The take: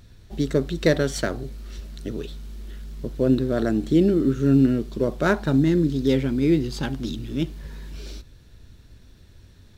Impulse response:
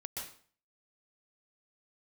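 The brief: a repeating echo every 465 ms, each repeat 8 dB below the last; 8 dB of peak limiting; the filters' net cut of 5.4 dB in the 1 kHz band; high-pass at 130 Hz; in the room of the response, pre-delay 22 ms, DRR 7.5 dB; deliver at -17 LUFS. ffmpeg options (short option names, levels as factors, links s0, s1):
-filter_complex "[0:a]highpass=130,equalizer=f=1000:t=o:g=-8.5,alimiter=limit=0.2:level=0:latency=1,aecho=1:1:465|930|1395|1860|2325:0.398|0.159|0.0637|0.0255|0.0102,asplit=2[s0][s1];[1:a]atrim=start_sample=2205,adelay=22[s2];[s1][s2]afir=irnorm=-1:irlink=0,volume=0.447[s3];[s0][s3]amix=inputs=2:normalize=0,volume=2.37"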